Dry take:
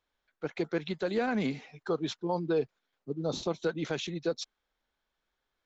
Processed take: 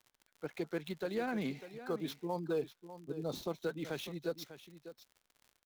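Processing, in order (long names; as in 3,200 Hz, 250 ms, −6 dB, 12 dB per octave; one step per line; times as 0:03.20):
gap after every zero crossing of 0.051 ms
surface crackle 61 per second −42 dBFS
single-tap delay 598 ms −13 dB
level −6.5 dB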